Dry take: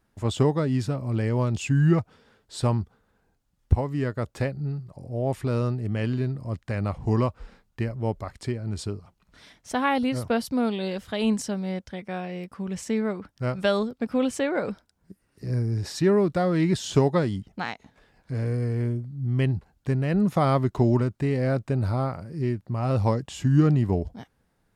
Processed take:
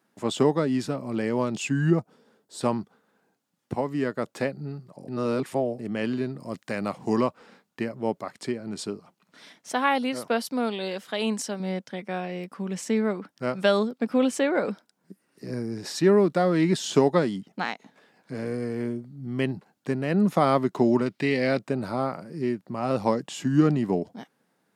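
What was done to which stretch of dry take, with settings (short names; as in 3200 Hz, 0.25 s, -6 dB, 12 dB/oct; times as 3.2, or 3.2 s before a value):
1.9–2.61 bell 2400 Hz -10 dB 2.6 oct
5.08–5.79 reverse
6.4–7.21 high shelf 4400 Hz +7.5 dB
9.73–11.6 low shelf 250 Hz -10.5 dB
21.06–21.59 band shelf 3100 Hz +9.5 dB
whole clip: HPF 180 Hz 24 dB/oct; gain +2 dB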